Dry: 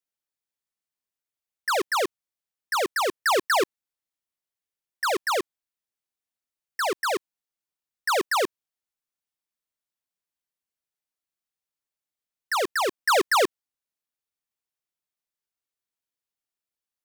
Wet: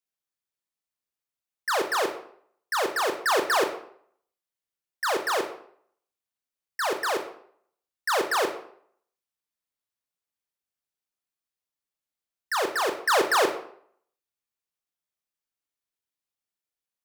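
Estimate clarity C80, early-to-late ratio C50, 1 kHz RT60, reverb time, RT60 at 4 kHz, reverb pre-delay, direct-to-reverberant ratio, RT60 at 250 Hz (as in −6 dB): 12.0 dB, 9.0 dB, 0.65 s, 0.60 s, 0.45 s, 20 ms, 5.0 dB, 0.55 s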